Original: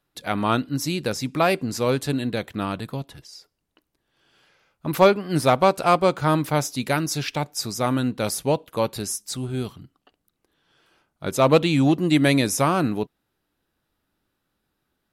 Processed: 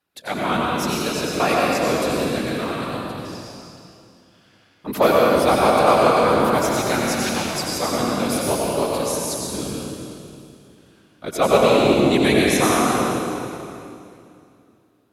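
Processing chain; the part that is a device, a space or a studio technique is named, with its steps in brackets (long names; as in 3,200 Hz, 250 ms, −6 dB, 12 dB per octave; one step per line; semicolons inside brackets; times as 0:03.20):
whispering ghost (random phases in short frames; high-pass filter 240 Hz 6 dB per octave; convolution reverb RT60 2.6 s, pre-delay 82 ms, DRR −3.5 dB)
level −1 dB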